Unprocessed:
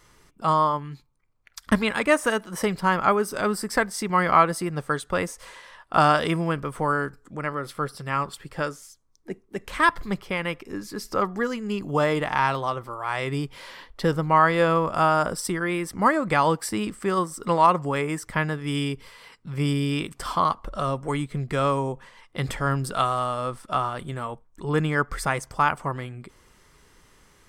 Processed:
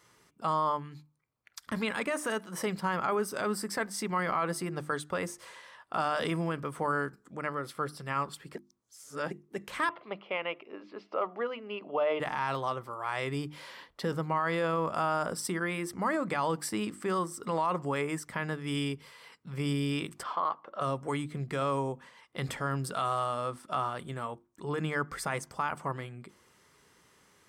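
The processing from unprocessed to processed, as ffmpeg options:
-filter_complex "[0:a]asettb=1/sr,asplit=3[a][b][c];[a]atrim=end=9.894[d];[b]atrim=start=9.89:end=12.2,asetpts=PTS-STARTPTS,afade=t=in:d=0.004:c=qsin,afade=t=out:st=2.306:d=0.004:c=qsin,highpass=400,equalizer=f=630:t=q:w=4:g=8,equalizer=f=1.7k:t=q:w=4:g=-9,equalizer=f=2.8k:t=q:w=4:g=5,lowpass=f=3k:w=0.5412,lowpass=f=3k:w=1.3066[e];[c]atrim=start=12.196[f];[d][e]acrossfade=d=0.004:c1=hsin:c2=qsin[g];[g][f]acrossfade=d=0.004:c1=qsin:c2=hsin,asplit=3[h][i][j];[h]afade=t=out:st=20.22:d=0.02[k];[i]highpass=390,lowpass=2.5k,afade=t=in:st=20.22:d=0.02,afade=t=out:st=20.8:d=0.02[l];[j]afade=t=in:st=20.8:d=0.02[m];[k][l][m]amix=inputs=3:normalize=0,asplit=3[n][o][p];[n]atrim=end=8.552[q];[o]atrim=start=8.548:end=9.312,asetpts=PTS-STARTPTS,areverse[r];[p]atrim=start=9.308[s];[q][r]acrossfade=d=0.004:c1=hsin:c2=hsin[t];[t][s]acrossfade=d=0.004:c1=hsin:c2=hsin,alimiter=limit=-15.5dB:level=0:latency=1:release=16,highpass=110,bandreject=f=50:t=h:w=6,bandreject=f=100:t=h:w=6,bandreject=f=150:t=h:w=6,bandreject=f=200:t=h:w=6,bandreject=f=250:t=h:w=6,bandreject=f=300:t=h:w=6,bandreject=f=350:t=h:w=6,volume=-5dB"

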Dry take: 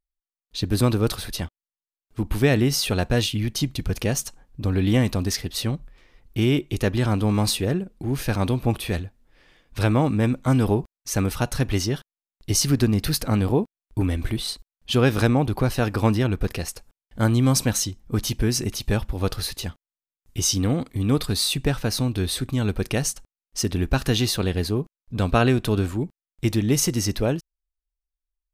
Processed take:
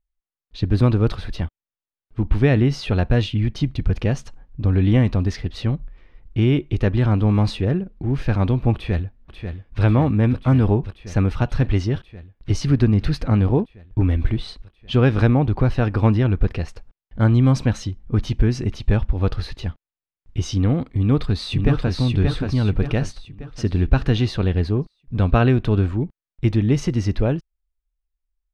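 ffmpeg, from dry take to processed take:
-filter_complex "[0:a]asplit=2[a][b];[b]afade=t=in:st=8.74:d=0.01,afade=t=out:st=9.82:d=0.01,aecho=0:1:540|1080|1620|2160|2700|3240|3780|4320|4860|5400|5940|6480:0.398107|0.318486|0.254789|0.203831|0.163065|0.130452|0.104361|0.0834891|0.0667913|0.053433|0.0427464|0.0341971[c];[a][c]amix=inputs=2:normalize=0,asplit=2[d][e];[e]afade=t=in:st=20.9:d=0.01,afade=t=out:st=21.95:d=0.01,aecho=0:1:580|1160|1740|2320|2900|3480:0.668344|0.300755|0.13534|0.0609028|0.0274063|0.0123328[f];[d][f]amix=inputs=2:normalize=0,lowpass=2.9k,lowshelf=f=130:g=9.5"

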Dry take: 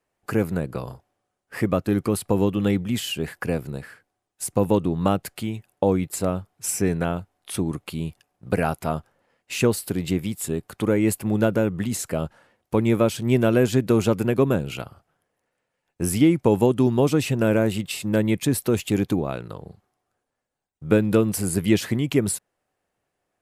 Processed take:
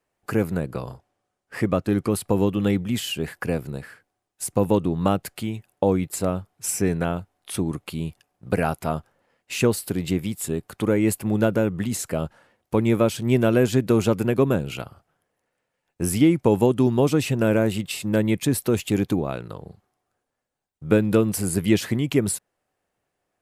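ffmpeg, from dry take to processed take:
-filter_complex "[0:a]asettb=1/sr,asplit=3[a][b][c];[a]atrim=end=0.774[d];[b]atrim=start=0.77:end=2.11,asetpts=PTS-STARTPTS,afade=t=in:d=0.004:c=qsin,afade=t=out:st=1.336:d=0.004:c=qsin,lowpass=11k[e];[c]atrim=start=2.106[f];[d][e]acrossfade=d=0.004:c1=hsin:c2=qsin[g];[g][f]acrossfade=d=0.004:c1=qsin:c2=hsin"

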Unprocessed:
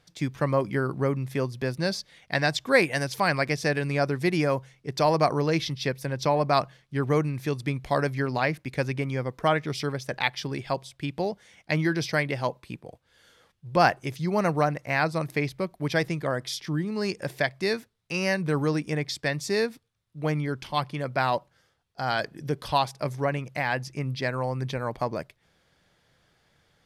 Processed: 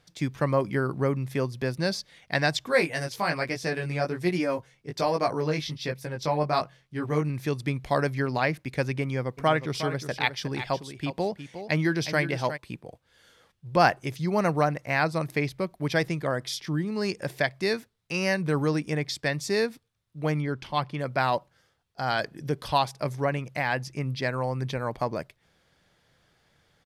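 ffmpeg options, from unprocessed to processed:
-filter_complex "[0:a]asettb=1/sr,asplit=3[a][b][c];[a]atrim=end=2.684[d];[b]atrim=start=2.68:end=7.3,asetpts=PTS-STARTPTS,afade=t=in:d=0.004:c=qsin,afade=t=out:st=4.616:d=0.004:c=qsin,flanger=delay=16.5:depth=3.5:speed=1.2[e];[c]atrim=start=7.296[f];[d][e]acrossfade=d=0.004:c1=hsin:c2=qsin[g];[g][f]acrossfade=d=0.004:c1=qsin:c2=hsin,asplit=3[h][i][j];[h]afade=t=out:st=9.37:d=0.02[k];[i]aecho=1:1:361:0.299,afade=t=in:st=9.37:d=0.02,afade=t=out:st=12.56:d=0.02[l];[j]afade=t=in:st=12.56:d=0.02[m];[k][l][m]amix=inputs=3:normalize=0,asettb=1/sr,asplit=3[n][o][p];[n]atrim=end=20.424[q];[o]atrim=start=20.42:end=20.99,asetpts=PTS-STARTPTS,afade=t=in:d=0.004:c=qsin,afade=t=out:st=0.566:d=0.004:c=qsin,highshelf=f=7.4k:g=-11.5[r];[p]atrim=start=20.986[s];[q][r]acrossfade=d=0.004:c1=hsin:c2=qsin[t];[t][s]acrossfade=d=0.004:c1=qsin:c2=hsin"

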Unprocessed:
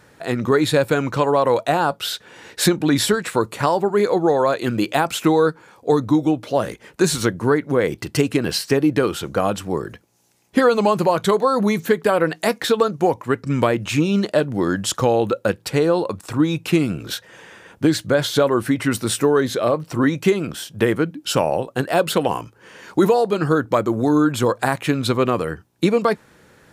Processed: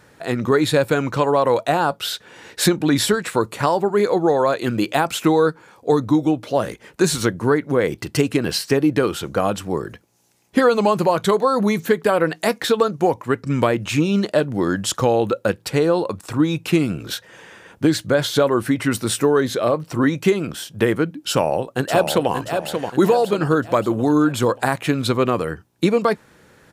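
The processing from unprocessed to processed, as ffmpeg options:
-filter_complex "[0:a]asplit=2[a][b];[b]afade=t=in:st=21.3:d=0.01,afade=t=out:st=22.31:d=0.01,aecho=0:1:580|1160|1740|2320|2900:0.501187|0.225534|0.10149|0.0456707|0.0205518[c];[a][c]amix=inputs=2:normalize=0"

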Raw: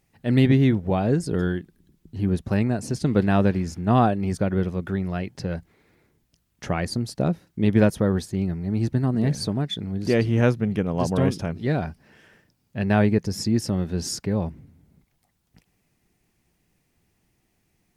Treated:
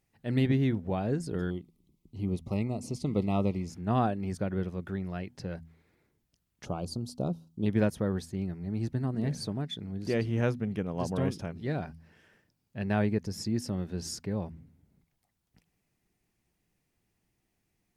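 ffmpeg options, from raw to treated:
-filter_complex "[0:a]asettb=1/sr,asplit=3[a][b][c];[a]atrim=end=1.504[d];[b]atrim=start=1.5:end=3.7,asetpts=PTS-STARTPTS,afade=t=in:d=0.004:c=qsin,afade=t=out:st=2.196:d=0.004:c=qsin,asuperstop=centerf=1600:order=12:qfactor=2.5[e];[c]atrim=start=3.696[f];[d][e]acrossfade=d=0.004:c1=hsin:c2=qsin[g];[g][f]acrossfade=d=0.004:c1=qsin:c2=hsin,asettb=1/sr,asplit=3[h][i][j];[h]atrim=end=6.654[k];[i]atrim=start=6.65:end=7.66,asetpts=PTS-STARTPTS,afade=t=in:d=0.004:c=qsin,afade=t=out:st=1.006:d=0.004:c=qsin,asuperstop=centerf=1900:order=4:qfactor=1[l];[j]atrim=start=7.656[m];[k][l]acrossfade=d=0.004:c1=hsin:c2=qsin[n];[n][m]acrossfade=d=0.004:c1=qsin:c2=hsin,bandreject=f=81.53:t=h:w=4,bandreject=f=163.06:t=h:w=4,bandreject=f=244.59:t=h:w=4,volume=-8.5dB"

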